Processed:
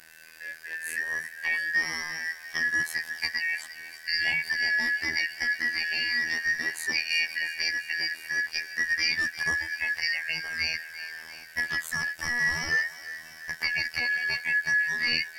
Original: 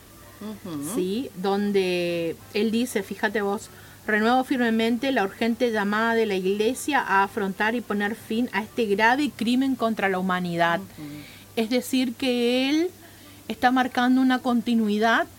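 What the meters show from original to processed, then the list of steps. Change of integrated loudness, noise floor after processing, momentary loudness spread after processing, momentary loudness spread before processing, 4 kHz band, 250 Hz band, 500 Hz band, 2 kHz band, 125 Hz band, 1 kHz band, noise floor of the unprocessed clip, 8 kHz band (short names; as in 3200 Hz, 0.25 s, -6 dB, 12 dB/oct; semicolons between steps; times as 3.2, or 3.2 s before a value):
-3.5 dB, -47 dBFS, 11 LU, 10 LU, +1.0 dB, -26.0 dB, -25.5 dB, +3.5 dB, -14.0 dB, -20.5 dB, -47 dBFS, -0.5 dB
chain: four-band scrambler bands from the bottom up 3142; in parallel at 0 dB: limiter -15 dBFS, peak gain reduction 9.5 dB; on the sum: robotiser 80.6 Hz; thinning echo 0.346 s, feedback 65%, high-pass 530 Hz, level -14 dB; gain -8 dB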